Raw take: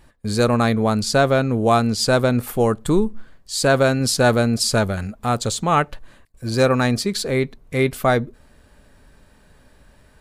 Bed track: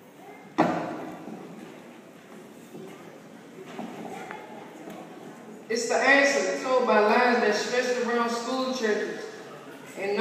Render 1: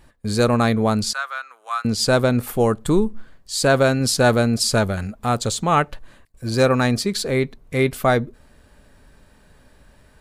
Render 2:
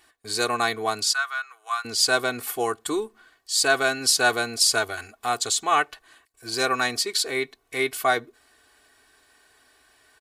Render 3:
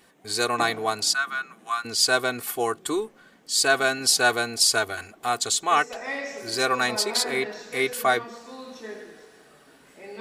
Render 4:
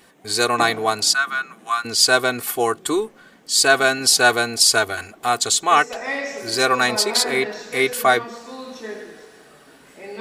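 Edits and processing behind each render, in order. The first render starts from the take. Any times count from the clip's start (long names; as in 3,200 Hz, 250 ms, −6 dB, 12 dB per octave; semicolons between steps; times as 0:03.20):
0:01.13–0:01.85: four-pole ladder high-pass 1,100 Hz, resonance 55%
high-pass filter 1,400 Hz 6 dB per octave; comb filter 2.7 ms, depth 85%
mix in bed track −12.5 dB
level +5.5 dB; brickwall limiter −1 dBFS, peak gain reduction 2 dB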